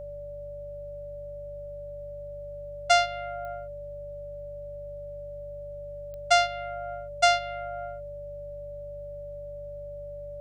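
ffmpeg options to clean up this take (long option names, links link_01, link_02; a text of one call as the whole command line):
ffmpeg -i in.wav -af "adeclick=threshold=4,bandreject=frequency=49.4:width_type=h:width=4,bandreject=frequency=98.8:width_type=h:width=4,bandreject=frequency=148.2:width_type=h:width=4,bandreject=frequency=580:width=30,agate=range=-21dB:threshold=-31dB" out.wav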